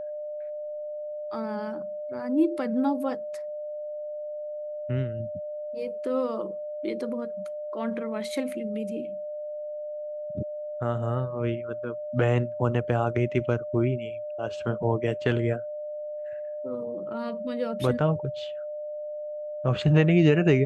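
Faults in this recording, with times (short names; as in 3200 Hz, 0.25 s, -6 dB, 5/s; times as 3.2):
tone 600 Hz -32 dBFS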